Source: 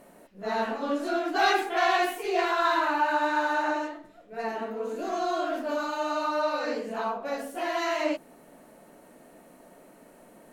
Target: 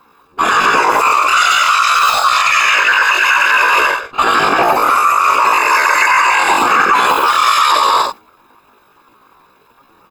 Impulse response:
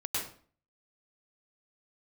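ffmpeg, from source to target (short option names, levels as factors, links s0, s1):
-filter_complex "[0:a]agate=range=0.0631:threshold=0.01:ratio=16:detection=peak,aecho=1:1:1.4:0.79,asetrate=45938,aresample=44100,bandreject=f=253.7:t=h:w=4,bandreject=f=507.4:t=h:w=4,asplit=2[s0][s1];[s1]aecho=0:1:100|175|231.2|273.4|305.1:0.631|0.398|0.251|0.158|0.1[s2];[s0][s2]amix=inputs=2:normalize=0,afftfilt=real='hypot(re,im)*cos(2*PI*random(0))':imag='hypot(re,im)*sin(2*PI*random(1))':win_size=512:overlap=0.75,asetrate=74167,aresample=44100,atempo=0.594604,areverse,acompressor=threshold=0.0158:ratio=6,areverse,alimiter=level_in=37.6:limit=0.891:release=50:level=0:latency=1,volume=0.891"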